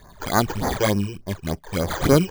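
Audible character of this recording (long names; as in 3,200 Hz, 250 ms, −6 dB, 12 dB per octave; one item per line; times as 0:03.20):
aliases and images of a low sample rate 2,700 Hz, jitter 0%
phaser sweep stages 12, 3.4 Hz, lowest notch 200–3,400 Hz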